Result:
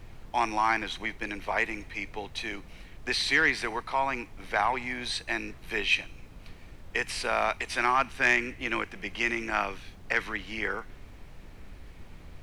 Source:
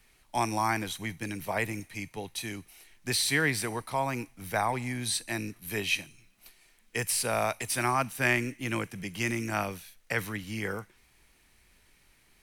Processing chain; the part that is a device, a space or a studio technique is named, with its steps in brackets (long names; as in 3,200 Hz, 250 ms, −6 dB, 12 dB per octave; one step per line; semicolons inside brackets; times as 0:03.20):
aircraft cabin announcement (band-pass filter 420–3,400 Hz; soft clipping −17 dBFS, distortion −20 dB; brown noise bed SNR 14 dB)
dynamic equaliser 570 Hz, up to −6 dB, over −46 dBFS, Q 1.7
level +6 dB